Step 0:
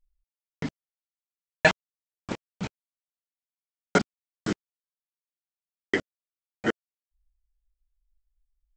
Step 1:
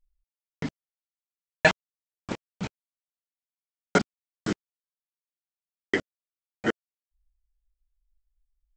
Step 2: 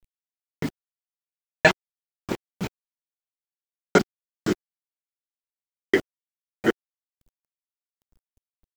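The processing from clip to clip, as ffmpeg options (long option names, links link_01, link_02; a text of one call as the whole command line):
ffmpeg -i in.wav -af anull out.wav
ffmpeg -i in.wav -af "equalizer=frequency=370:width=4:gain=7,acrusher=bits=8:dc=4:mix=0:aa=0.000001,volume=2.5dB" out.wav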